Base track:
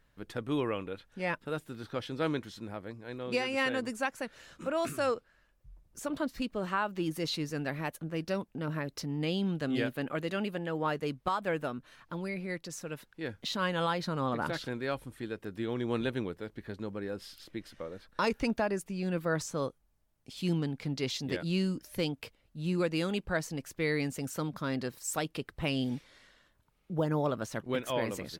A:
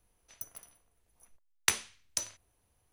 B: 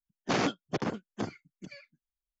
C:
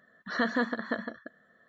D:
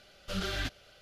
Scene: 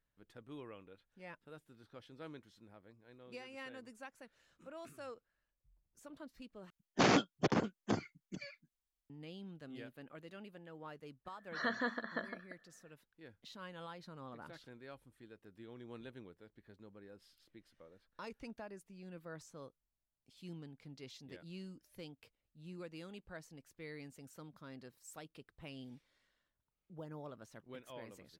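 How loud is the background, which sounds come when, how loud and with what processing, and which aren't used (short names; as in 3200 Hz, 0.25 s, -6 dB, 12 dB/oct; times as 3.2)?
base track -18.5 dB
6.7 replace with B -0.5 dB
11.25 add C -6.5 dB + low shelf 440 Hz -6.5 dB
not used: A, D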